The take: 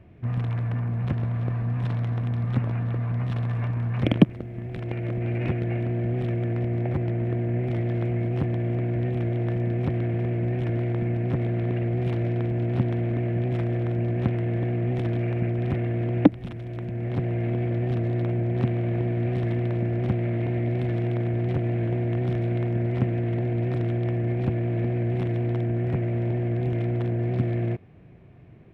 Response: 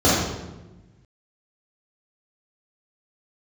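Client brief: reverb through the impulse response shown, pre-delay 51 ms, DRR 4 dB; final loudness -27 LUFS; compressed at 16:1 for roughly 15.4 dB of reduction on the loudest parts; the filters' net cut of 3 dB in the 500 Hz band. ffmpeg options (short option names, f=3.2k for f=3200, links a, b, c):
-filter_complex "[0:a]equalizer=f=500:t=o:g=-5,acompressor=threshold=-27dB:ratio=16,asplit=2[a][b];[1:a]atrim=start_sample=2205,adelay=51[c];[b][c]afir=irnorm=-1:irlink=0,volume=-26.5dB[d];[a][d]amix=inputs=2:normalize=0,volume=-0.5dB"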